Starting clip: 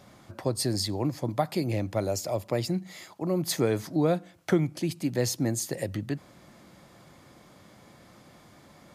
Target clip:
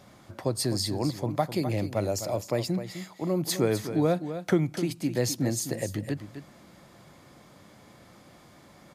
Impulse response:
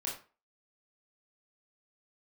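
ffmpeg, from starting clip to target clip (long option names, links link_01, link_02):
-af "aecho=1:1:256:0.299"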